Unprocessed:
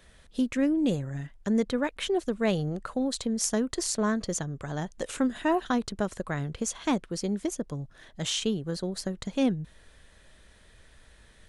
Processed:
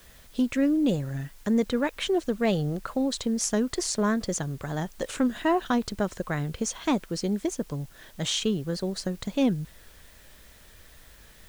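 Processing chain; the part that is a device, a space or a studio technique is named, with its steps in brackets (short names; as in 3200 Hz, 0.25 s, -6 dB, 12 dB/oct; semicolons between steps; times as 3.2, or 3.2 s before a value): compact cassette (soft clip -14.5 dBFS, distortion -26 dB; LPF 8400 Hz; wow and flutter; white noise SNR 29 dB); gain +2.5 dB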